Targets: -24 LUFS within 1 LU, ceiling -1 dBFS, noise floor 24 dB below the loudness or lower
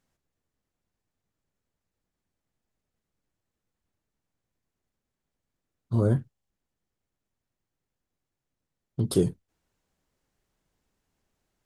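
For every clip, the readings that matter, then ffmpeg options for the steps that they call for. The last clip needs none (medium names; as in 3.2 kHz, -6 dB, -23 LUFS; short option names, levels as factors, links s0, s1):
loudness -27.0 LUFS; peak level -10.0 dBFS; loudness target -24.0 LUFS
-> -af "volume=1.41"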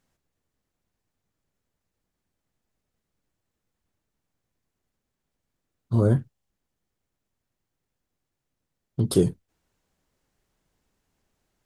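loudness -24.5 LUFS; peak level -7.0 dBFS; noise floor -83 dBFS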